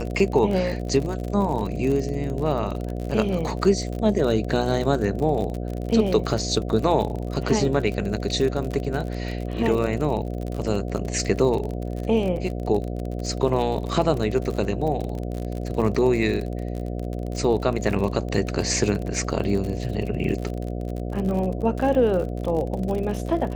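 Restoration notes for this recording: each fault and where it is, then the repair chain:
buzz 60 Hz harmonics 12 -29 dBFS
crackle 46 per s -28 dBFS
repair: de-click; de-hum 60 Hz, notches 12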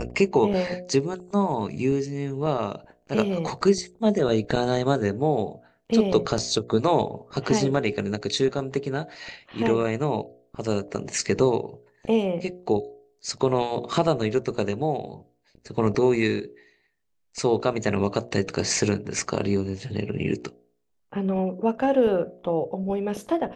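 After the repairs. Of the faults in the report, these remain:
nothing left

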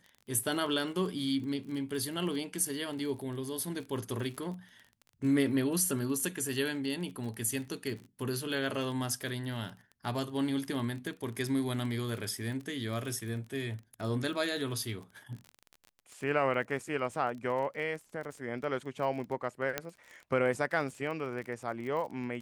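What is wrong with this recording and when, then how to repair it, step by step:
crackle 27 per s -39 dBFS
19.78 s: pop -15 dBFS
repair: de-click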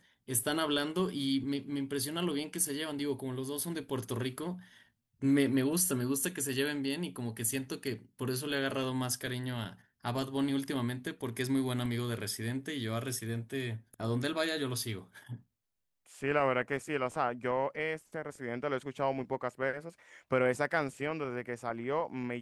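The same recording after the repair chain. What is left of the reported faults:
nothing left

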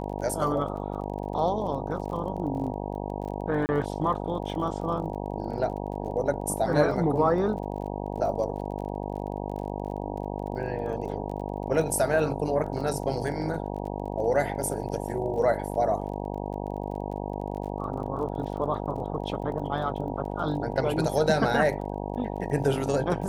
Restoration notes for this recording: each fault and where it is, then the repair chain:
buzz 50 Hz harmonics 19 -33 dBFS
crackle 30 per s -38 dBFS
3.66–3.69 s: dropout 29 ms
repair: de-click; de-hum 50 Hz, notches 19; interpolate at 3.66 s, 29 ms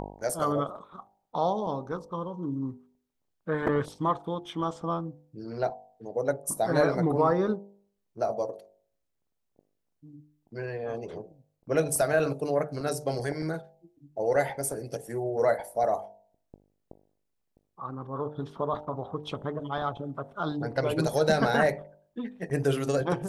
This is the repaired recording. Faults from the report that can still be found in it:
nothing left

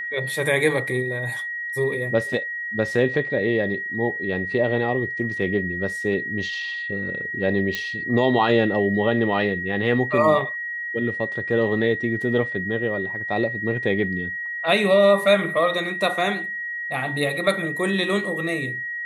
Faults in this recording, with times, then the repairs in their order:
whine 1.9 kHz -27 dBFS
7.75 s: pop -11 dBFS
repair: de-click; band-stop 1.9 kHz, Q 30

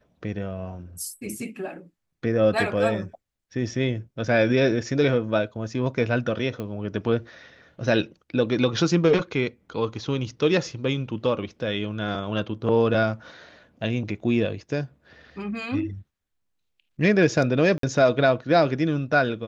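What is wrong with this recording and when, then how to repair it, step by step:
6.60 s: pop -20 dBFS
17.78–17.83 s: dropout 53 ms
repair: de-click; interpolate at 17.78 s, 53 ms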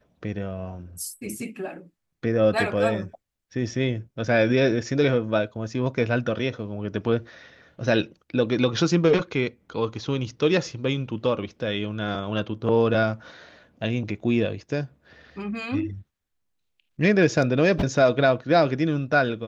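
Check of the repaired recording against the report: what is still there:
nothing left

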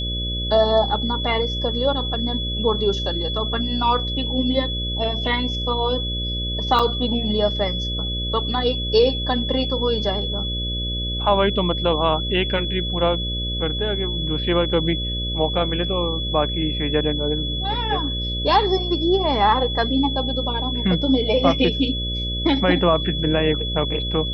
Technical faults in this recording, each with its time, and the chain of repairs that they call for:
buzz 60 Hz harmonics 10 -27 dBFS
whine 3.4 kHz -26 dBFS
6.79–6.80 s: dropout 5.3 ms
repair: de-hum 60 Hz, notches 10; band-stop 3.4 kHz, Q 30; interpolate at 6.79 s, 5.3 ms

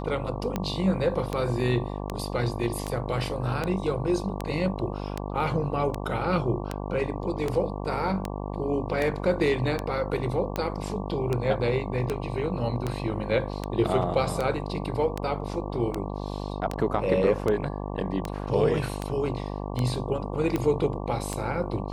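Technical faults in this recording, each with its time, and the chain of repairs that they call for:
buzz 50 Hz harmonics 23 -33 dBFS
tick 78 rpm -14 dBFS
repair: de-click; de-hum 50 Hz, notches 23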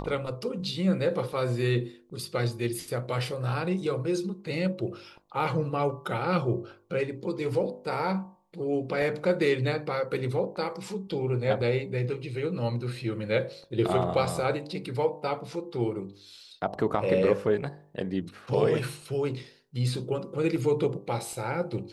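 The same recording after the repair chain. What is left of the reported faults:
nothing left

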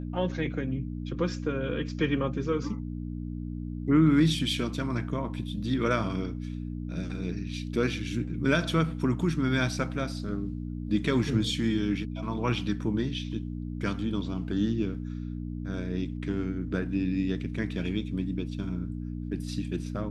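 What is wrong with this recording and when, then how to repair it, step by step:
hum 60 Hz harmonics 5 -35 dBFS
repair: de-hum 60 Hz, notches 5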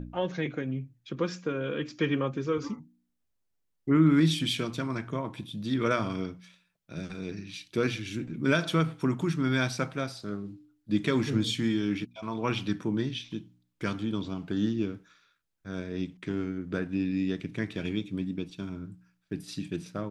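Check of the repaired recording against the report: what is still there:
nothing left

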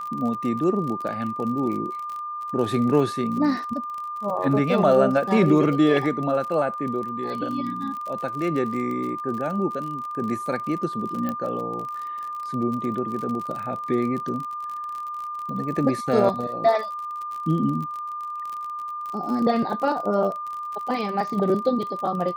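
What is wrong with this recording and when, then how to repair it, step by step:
crackle 41 per s -30 dBFS
whine 1.2 kHz -29 dBFS
11.29 s: pop -15 dBFS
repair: de-click; band-stop 1.2 kHz, Q 30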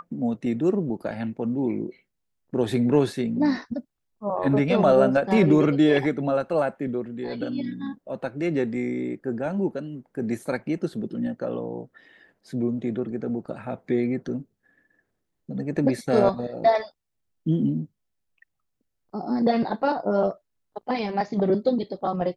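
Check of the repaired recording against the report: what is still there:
11.29 s: pop

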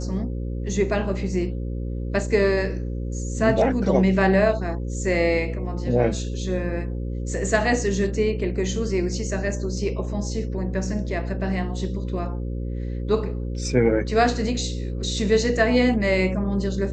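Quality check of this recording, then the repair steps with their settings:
buzz 60 Hz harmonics 9 -28 dBFS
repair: de-hum 60 Hz, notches 9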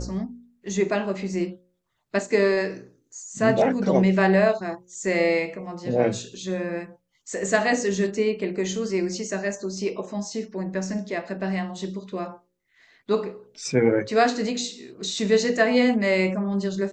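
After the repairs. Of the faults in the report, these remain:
nothing left

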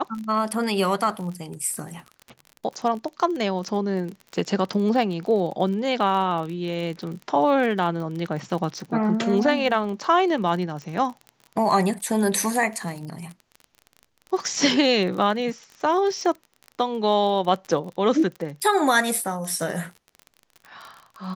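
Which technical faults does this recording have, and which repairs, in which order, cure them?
crackle 33 per s -31 dBFS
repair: de-click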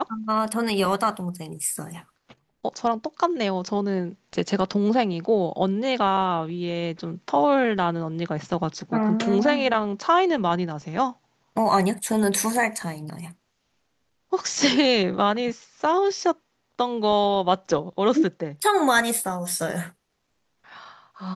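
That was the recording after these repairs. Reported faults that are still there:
nothing left

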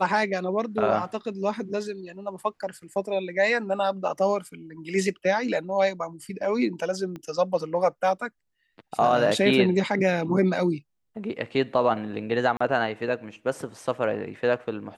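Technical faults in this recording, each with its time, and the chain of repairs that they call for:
7.16 s: pop -25 dBFS
12.57–12.61 s: dropout 35 ms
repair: de-click; interpolate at 12.57 s, 35 ms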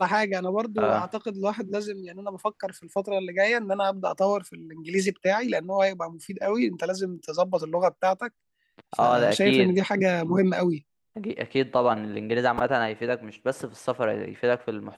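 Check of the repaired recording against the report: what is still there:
7.16 s: pop

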